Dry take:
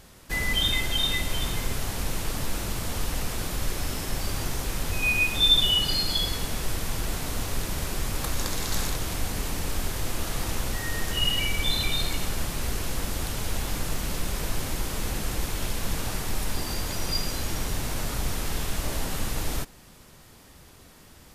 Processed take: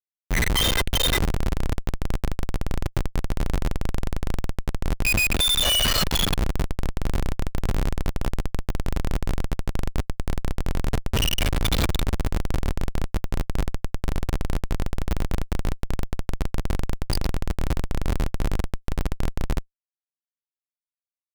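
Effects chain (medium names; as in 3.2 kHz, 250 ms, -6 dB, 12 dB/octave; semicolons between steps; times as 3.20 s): 10.92–12.56 s: square wave that keeps the level; in parallel at -0.5 dB: compression 20:1, threshold -32 dBFS, peak gain reduction 19 dB; on the sum: spectral gate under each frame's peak -15 dB strong; dynamic bell 3.2 kHz, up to +3 dB, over -35 dBFS, Q 1.5; on a send: two-band feedback delay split 410 Hz, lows 180 ms, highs 90 ms, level -8 dB; on the sum: Schmitt trigger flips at -24 dBFS; trim +3 dB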